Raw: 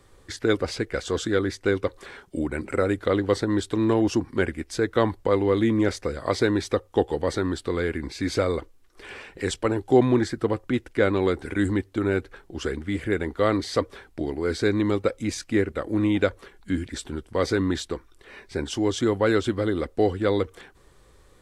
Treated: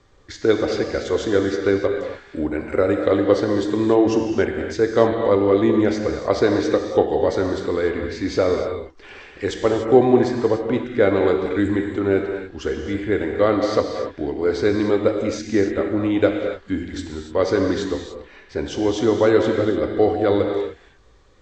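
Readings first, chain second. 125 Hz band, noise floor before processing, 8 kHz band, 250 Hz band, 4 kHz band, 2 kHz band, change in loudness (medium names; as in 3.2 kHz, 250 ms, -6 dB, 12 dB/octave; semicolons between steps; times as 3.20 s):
0.0 dB, -56 dBFS, no reading, +4.0 dB, +1.0 dB, +2.0 dB, +5.0 dB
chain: steep low-pass 7.1 kHz 48 dB/octave; dynamic bell 550 Hz, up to +7 dB, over -35 dBFS, Q 0.85; gated-style reverb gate 320 ms flat, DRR 2.5 dB; trim -1 dB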